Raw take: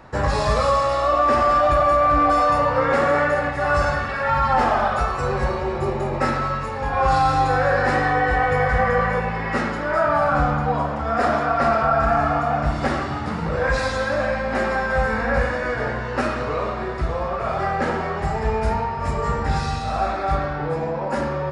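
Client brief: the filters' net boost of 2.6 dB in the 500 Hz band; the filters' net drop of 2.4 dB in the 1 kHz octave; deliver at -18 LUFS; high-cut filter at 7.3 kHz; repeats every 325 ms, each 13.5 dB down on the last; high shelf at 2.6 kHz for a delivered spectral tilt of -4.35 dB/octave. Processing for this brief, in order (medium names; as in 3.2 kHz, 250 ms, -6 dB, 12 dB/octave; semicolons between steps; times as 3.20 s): low-pass 7.3 kHz; peaking EQ 500 Hz +4.5 dB; peaking EQ 1 kHz -6 dB; treble shelf 2.6 kHz +6 dB; feedback delay 325 ms, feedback 21%, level -13.5 dB; trim +2.5 dB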